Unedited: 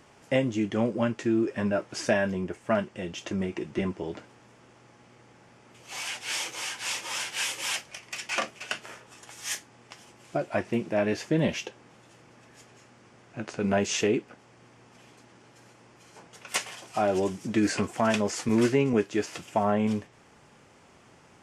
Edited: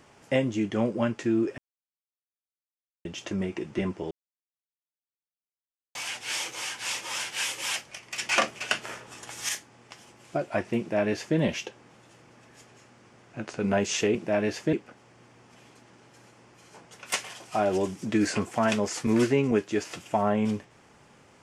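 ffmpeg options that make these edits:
-filter_complex "[0:a]asplit=9[s0][s1][s2][s3][s4][s5][s6][s7][s8];[s0]atrim=end=1.58,asetpts=PTS-STARTPTS,afade=t=out:st=1.576:d=0.004:c=hsin[s9];[s1]atrim=start=1.58:end=3.05,asetpts=PTS-STARTPTS,volume=0[s10];[s2]atrim=start=3.05:end=4.11,asetpts=PTS-STARTPTS,afade=t=in:d=0.004:c=hsin,afade=t=out:st=1.056:d=0.004:c=hsin[s11];[s3]atrim=start=4.11:end=5.95,asetpts=PTS-STARTPTS,volume=0[s12];[s4]atrim=start=5.95:end=8.182,asetpts=PTS-STARTPTS,afade=t=in:d=0.004:c=hsin[s13];[s5]atrim=start=8.178:end=9.492,asetpts=PTS-STARTPTS,volume=1.88[s14];[s6]atrim=start=9.488:end=14.152[s15];[s7]atrim=start=10.788:end=11.372[s16];[s8]atrim=start=14.148[s17];[s9][s10][s11][s12][s13]concat=n=5:v=0:a=1[s18];[s18][s14]acrossfade=d=0.004:c1=hsin:c2=hsin[s19];[s19][s15]acrossfade=d=0.004:c1=hsin:c2=hsin[s20];[s20][s16]acrossfade=d=0.004:c1=hsin:c2=hsin[s21];[s21][s17]acrossfade=d=0.004:c1=hsin:c2=hsin"

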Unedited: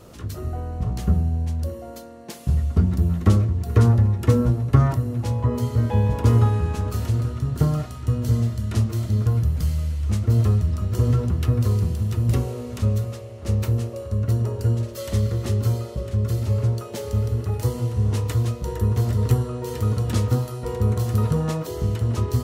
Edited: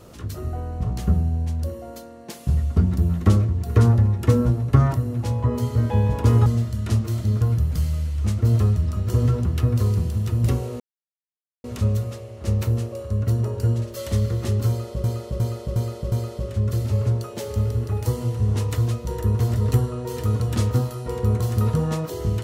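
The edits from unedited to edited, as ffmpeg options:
-filter_complex "[0:a]asplit=7[s0][s1][s2][s3][s4][s5][s6];[s0]atrim=end=6.462[s7];[s1]atrim=start=8.308:end=12.65,asetpts=PTS-STARTPTS,afade=t=out:st=4.338:d=0.004:c=hsin,apad=pad_dur=0.84[s8];[s2]atrim=start=12.65:end=16.052,asetpts=PTS-STARTPTS,afade=t=in:d=0.004:c=hsin[s9];[s3]atrim=start=15.688:end=16.052[s10];[s4]atrim=start=15.688:end=16.052[s11];[s5]atrim=start=15.688:end=16.052[s12];[s6]atrim=start=15.688[s13];[s8][s9]concat=n=2:v=0:a=1[s14];[s7][s14]acrossfade=d=0.004:c1=hsin:c2=hsin[s15];[s15][s10]acrossfade=d=0.004:c1=hsin:c2=hsin[s16];[s16][s11]acrossfade=d=0.004:c1=hsin:c2=hsin[s17];[s17][s12]acrossfade=d=0.004:c1=hsin:c2=hsin[s18];[s18][s13]acrossfade=d=0.004:c1=hsin:c2=hsin"

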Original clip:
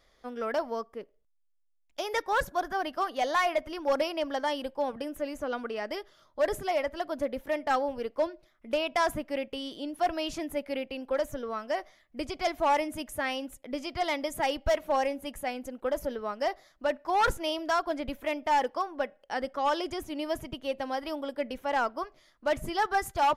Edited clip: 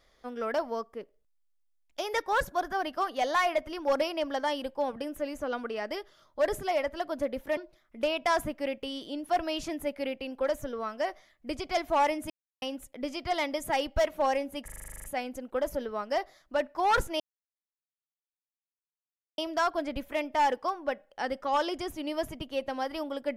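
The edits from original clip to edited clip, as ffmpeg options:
-filter_complex "[0:a]asplit=15[s0][s1][s2][s3][s4][s5][s6][s7][s8][s9][s10][s11][s12][s13][s14];[s0]atrim=end=7.572[s15];[s1]atrim=start=8.268:end=13,asetpts=PTS-STARTPTS,afade=t=out:st=4.728:d=0.004:c=hsin[s16];[s2]atrim=start=13:end=13.32,asetpts=PTS-STARTPTS,volume=0[s17];[s3]atrim=start=13.32:end=15.382,asetpts=PTS-STARTPTS,afade=t=in:d=0.004:c=hsin[s18];[s4]atrim=start=15.338:end=15.382[s19];[s5]atrim=start=15.338:end=15.382[s20];[s6]atrim=start=15.338:end=15.382[s21];[s7]atrim=start=15.338:end=15.382[s22];[s8]atrim=start=15.338:end=15.382[s23];[s9]atrim=start=15.338:end=15.382[s24];[s10]atrim=start=15.338:end=15.382[s25];[s11]atrim=start=15.338:end=15.382[s26];[s12]atrim=start=15.338:end=15.382[s27];[s13]atrim=start=15.338:end=17.5,asetpts=PTS-STARTPTS,afade=t=out:st=2.158:d=0.004:c=hsin,apad=pad_dur=2.18[s28];[s14]atrim=start=17.5,asetpts=PTS-STARTPTS,afade=t=in:d=0.004:c=hsin[s29];[s16][s17][s18]concat=n=3:v=0:a=1[s30];[s15][s30]acrossfade=d=0.004:c1=hsin:c2=hsin[s31];[s31][s19]acrossfade=d=0.004:c1=hsin:c2=hsin[s32];[s32][s20]acrossfade=d=0.004:c1=hsin:c2=hsin[s33];[s33][s21]acrossfade=d=0.004:c1=hsin:c2=hsin[s34];[s34][s22]acrossfade=d=0.004:c1=hsin:c2=hsin[s35];[s35][s23]acrossfade=d=0.004:c1=hsin:c2=hsin[s36];[s36][s24]acrossfade=d=0.004:c1=hsin:c2=hsin[s37];[s37][s25]acrossfade=d=0.004:c1=hsin:c2=hsin[s38];[s38][s26]acrossfade=d=0.004:c1=hsin:c2=hsin[s39];[s39][s27]acrossfade=d=0.004:c1=hsin:c2=hsin[s40];[s28][s29]concat=n=2:v=0:a=1[s41];[s40][s41]acrossfade=d=0.004:c1=hsin:c2=hsin"

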